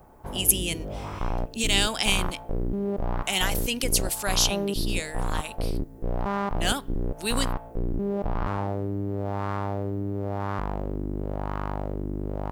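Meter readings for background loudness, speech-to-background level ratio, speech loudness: -31.5 LUFS, 5.0 dB, -26.5 LUFS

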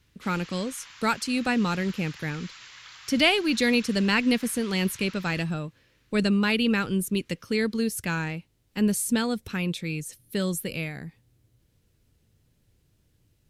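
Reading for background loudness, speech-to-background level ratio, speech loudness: -45.0 LUFS, 18.5 dB, -26.5 LUFS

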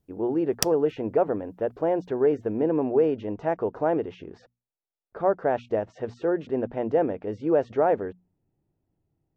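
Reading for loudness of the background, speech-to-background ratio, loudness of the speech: -30.0 LUFS, 4.0 dB, -26.0 LUFS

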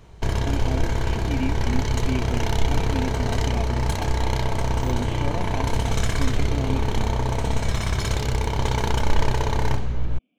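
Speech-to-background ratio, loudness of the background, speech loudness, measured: -9.5 dB, -25.0 LUFS, -34.5 LUFS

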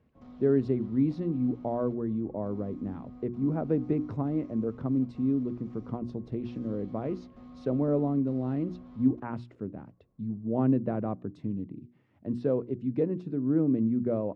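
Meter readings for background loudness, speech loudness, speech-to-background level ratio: -49.5 LUFS, -30.5 LUFS, 19.0 dB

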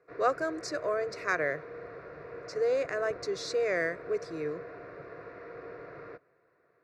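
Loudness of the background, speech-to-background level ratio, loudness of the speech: -45.0 LUFS, 13.0 dB, -32.0 LUFS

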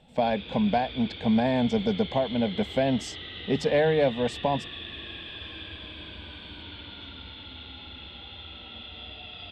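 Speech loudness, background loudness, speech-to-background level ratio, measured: -26.5 LUFS, -39.0 LUFS, 12.5 dB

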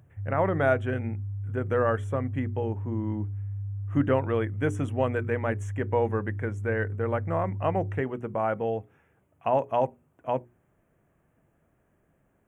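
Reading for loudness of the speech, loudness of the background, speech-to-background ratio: -29.0 LUFS, -35.0 LUFS, 6.0 dB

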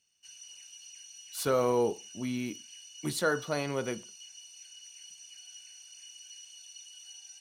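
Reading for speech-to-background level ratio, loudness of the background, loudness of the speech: 15.5 dB, -47.0 LUFS, -31.5 LUFS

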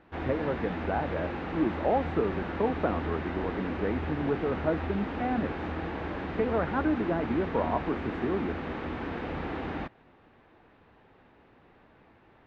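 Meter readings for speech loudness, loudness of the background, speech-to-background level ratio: -31.5 LUFS, -35.0 LUFS, 3.5 dB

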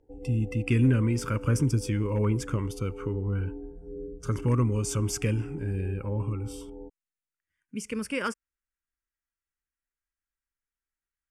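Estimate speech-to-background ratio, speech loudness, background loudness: 13.5 dB, -28.5 LUFS, -42.0 LUFS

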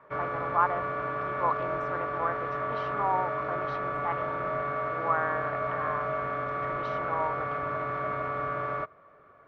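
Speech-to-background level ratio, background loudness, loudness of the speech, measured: -2.0 dB, -31.5 LUFS, -33.5 LUFS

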